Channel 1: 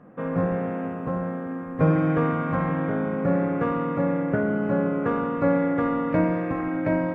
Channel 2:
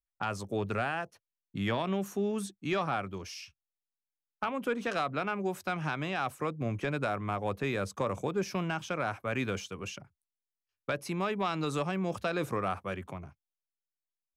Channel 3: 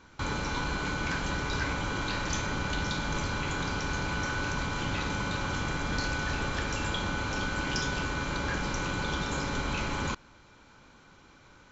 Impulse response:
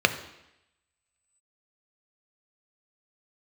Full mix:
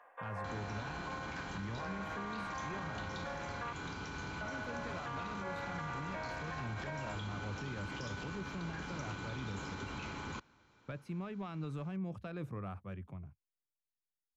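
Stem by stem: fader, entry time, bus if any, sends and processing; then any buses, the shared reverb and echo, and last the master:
+2.0 dB, 0.00 s, muted 3.73–4.41, no send, HPF 770 Hz 24 dB/oct; notch 1300 Hz, Q 6.2; auto duck -8 dB, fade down 0.25 s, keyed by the second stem
-15.0 dB, 0.00 s, no send, tone controls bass +14 dB, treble -9 dB
-10.0 dB, 0.25 s, no send, HPF 63 Hz; high shelf 4900 Hz -5 dB; notch 560 Hz, Q 12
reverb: off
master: limiter -32.5 dBFS, peak gain reduction 9 dB

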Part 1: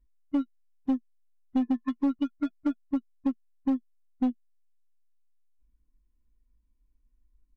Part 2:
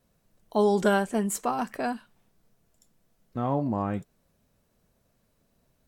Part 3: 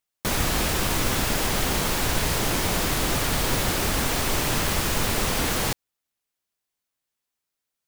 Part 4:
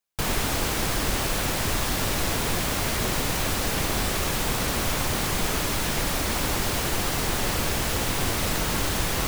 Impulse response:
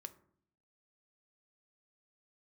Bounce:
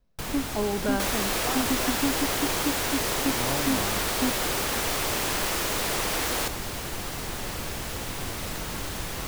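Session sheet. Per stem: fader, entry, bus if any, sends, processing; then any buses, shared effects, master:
-1.5 dB, 0.00 s, no send, dry
-6.0 dB, 0.00 s, no send, steep low-pass 5800 Hz
-2.5 dB, 0.75 s, no send, HPF 300 Hz 24 dB/oct
-7.5 dB, 0.00 s, no send, dry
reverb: off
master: dry

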